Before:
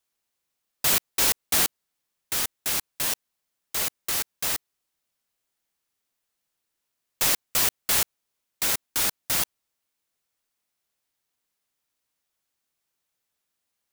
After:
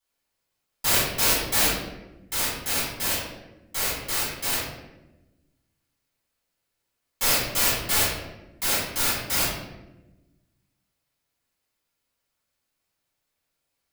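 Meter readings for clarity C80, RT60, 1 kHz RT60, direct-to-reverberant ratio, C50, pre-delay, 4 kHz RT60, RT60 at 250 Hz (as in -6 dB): 4.0 dB, 1.0 s, 0.85 s, -10.0 dB, 0.5 dB, 5 ms, 0.65 s, 1.7 s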